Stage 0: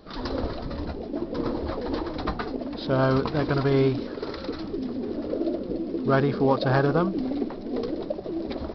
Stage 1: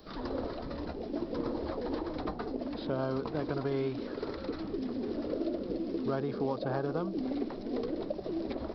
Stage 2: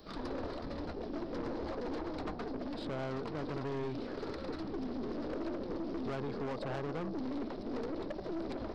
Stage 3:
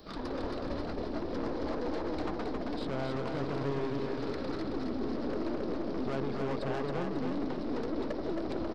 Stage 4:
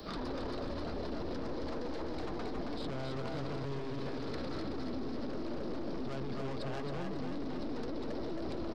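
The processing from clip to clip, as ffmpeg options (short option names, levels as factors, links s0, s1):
-filter_complex "[0:a]highshelf=f=4000:g=10.5,acrossover=split=220|910|3000[s0][s1][s2][s3];[s0]acompressor=threshold=0.0126:ratio=4[s4];[s1]acompressor=threshold=0.0447:ratio=4[s5];[s2]acompressor=threshold=0.00562:ratio=4[s6];[s3]acompressor=threshold=0.00158:ratio=4[s7];[s4][s5][s6][s7]amix=inputs=4:normalize=0,volume=0.631"
-af "aeval=exprs='(tanh(63.1*val(0)+0.55)-tanh(0.55))/63.1':c=same,volume=1.19"
-af "aecho=1:1:271|542|813|1084|1355|1626:0.631|0.303|0.145|0.0698|0.0335|0.0161,volume=1.33"
-filter_complex "[0:a]asplit=2[s0][s1];[s1]adelay=280,highpass=300,lowpass=3400,asoftclip=type=hard:threshold=0.0251,volume=0.398[s2];[s0][s2]amix=inputs=2:normalize=0,acrossover=split=150|3000[s3][s4][s5];[s4]acompressor=threshold=0.0112:ratio=2.5[s6];[s3][s6][s5]amix=inputs=3:normalize=0,alimiter=level_in=4.22:limit=0.0631:level=0:latency=1:release=19,volume=0.237,volume=2"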